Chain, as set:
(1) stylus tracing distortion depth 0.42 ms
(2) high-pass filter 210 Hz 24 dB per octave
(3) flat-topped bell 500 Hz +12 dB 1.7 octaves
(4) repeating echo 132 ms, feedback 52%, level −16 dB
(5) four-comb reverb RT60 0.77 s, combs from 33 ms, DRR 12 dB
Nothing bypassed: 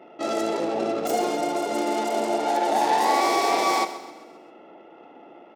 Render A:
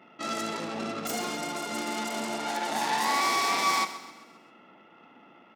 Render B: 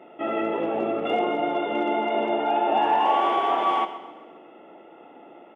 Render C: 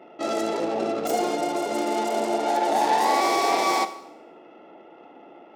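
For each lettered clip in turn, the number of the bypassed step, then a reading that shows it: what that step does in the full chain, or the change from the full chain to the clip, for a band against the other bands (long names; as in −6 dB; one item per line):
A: 3, change in momentary loudness spread +3 LU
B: 1, change in crest factor −1.5 dB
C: 4, echo-to-direct ratio −9.5 dB to −12.0 dB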